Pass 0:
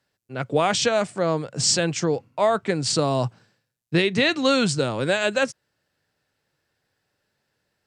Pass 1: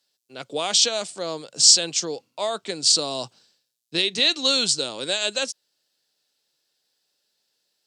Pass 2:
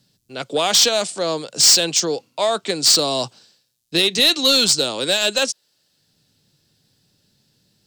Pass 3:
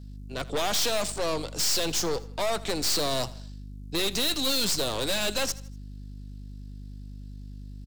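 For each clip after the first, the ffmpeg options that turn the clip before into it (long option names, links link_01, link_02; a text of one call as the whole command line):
ffmpeg -i in.wav -af "highpass=270,highshelf=frequency=2700:width_type=q:width=1.5:gain=11.5,volume=-6dB" out.wav
ffmpeg -i in.wav -filter_complex "[0:a]acrossover=split=180|960|3200[link_01][link_02][link_03][link_04];[link_01]acompressor=mode=upward:threshold=-51dB:ratio=2.5[link_05];[link_05][link_02][link_03][link_04]amix=inputs=4:normalize=0,asoftclip=type=tanh:threshold=-16.5dB,volume=8dB" out.wav
ffmpeg -i in.wav -af "aeval=exprs='val(0)+0.0141*(sin(2*PI*50*n/s)+sin(2*PI*2*50*n/s)/2+sin(2*PI*3*50*n/s)/3+sin(2*PI*4*50*n/s)/4+sin(2*PI*5*50*n/s)/5)':channel_layout=same,aeval=exprs='(tanh(17.8*val(0)+0.7)-tanh(0.7))/17.8':channel_layout=same,aecho=1:1:80|160|240:0.112|0.0494|0.0217" out.wav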